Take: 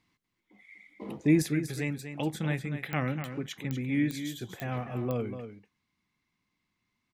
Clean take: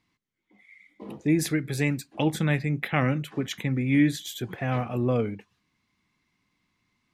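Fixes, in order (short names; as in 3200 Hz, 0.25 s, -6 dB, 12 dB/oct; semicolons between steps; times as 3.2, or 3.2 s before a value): de-click; inverse comb 0.243 s -9.5 dB; gain 0 dB, from 1.42 s +7 dB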